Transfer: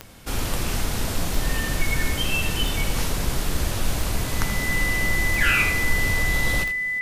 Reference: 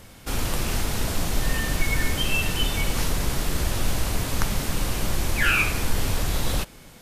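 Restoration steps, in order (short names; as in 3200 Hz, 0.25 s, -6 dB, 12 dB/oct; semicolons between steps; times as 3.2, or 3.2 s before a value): de-click; notch 2000 Hz, Q 30; inverse comb 80 ms -10.5 dB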